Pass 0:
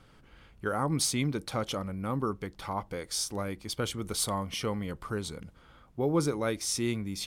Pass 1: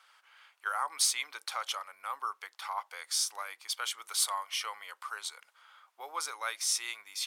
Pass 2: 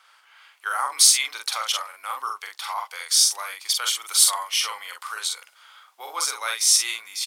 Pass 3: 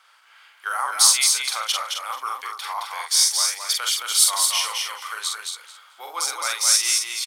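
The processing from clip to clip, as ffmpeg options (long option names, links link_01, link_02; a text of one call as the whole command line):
ffmpeg -i in.wav -af "highpass=frequency=920:width=0.5412,highpass=frequency=920:width=1.3066,volume=2dB" out.wav
ffmpeg -i in.wav -filter_complex "[0:a]acrossover=split=510|2700[link_01][link_02][link_03];[link_03]dynaudnorm=framelen=370:gausssize=3:maxgain=7dB[link_04];[link_01][link_02][link_04]amix=inputs=3:normalize=0,asplit=2[link_05][link_06];[link_06]adelay=45,volume=-3.5dB[link_07];[link_05][link_07]amix=inputs=2:normalize=0,volume=5dB" out.wav
ffmpeg -i in.wav -af "aecho=1:1:218|436|654:0.631|0.107|0.0182" out.wav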